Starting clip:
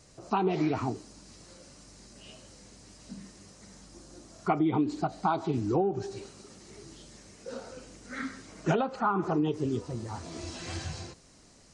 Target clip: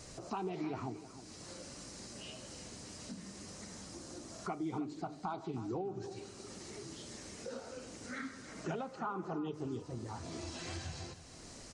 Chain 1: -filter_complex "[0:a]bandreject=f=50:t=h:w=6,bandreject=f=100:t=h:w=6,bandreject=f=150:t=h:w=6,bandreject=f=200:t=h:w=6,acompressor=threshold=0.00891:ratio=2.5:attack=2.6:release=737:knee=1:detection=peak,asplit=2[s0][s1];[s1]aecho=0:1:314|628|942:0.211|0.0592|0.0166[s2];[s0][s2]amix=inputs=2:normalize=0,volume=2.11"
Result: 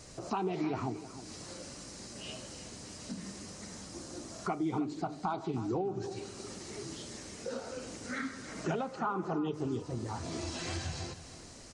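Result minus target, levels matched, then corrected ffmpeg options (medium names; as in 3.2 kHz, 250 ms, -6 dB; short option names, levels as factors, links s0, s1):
compression: peak gain reduction -5.5 dB
-filter_complex "[0:a]bandreject=f=50:t=h:w=6,bandreject=f=100:t=h:w=6,bandreject=f=150:t=h:w=6,bandreject=f=200:t=h:w=6,acompressor=threshold=0.00316:ratio=2.5:attack=2.6:release=737:knee=1:detection=peak,asplit=2[s0][s1];[s1]aecho=0:1:314|628|942:0.211|0.0592|0.0166[s2];[s0][s2]amix=inputs=2:normalize=0,volume=2.11"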